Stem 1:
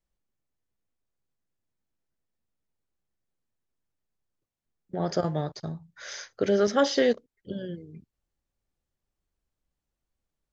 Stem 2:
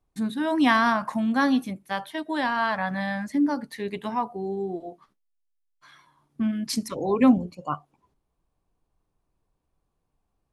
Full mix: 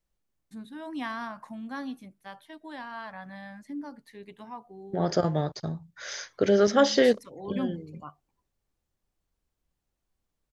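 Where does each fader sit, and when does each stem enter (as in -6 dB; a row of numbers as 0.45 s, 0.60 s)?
+2.0 dB, -14.5 dB; 0.00 s, 0.35 s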